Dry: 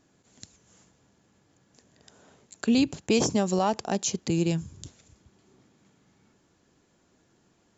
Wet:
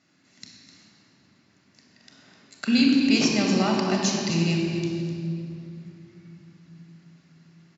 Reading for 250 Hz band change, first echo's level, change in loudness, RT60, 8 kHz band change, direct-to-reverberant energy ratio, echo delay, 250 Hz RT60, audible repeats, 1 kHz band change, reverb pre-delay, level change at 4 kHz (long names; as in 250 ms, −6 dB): +5.0 dB, −11.0 dB, +3.0 dB, 2.8 s, can't be measured, −0.5 dB, 254 ms, 4.5 s, 1, 0.0 dB, 29 ms, +7.5 dB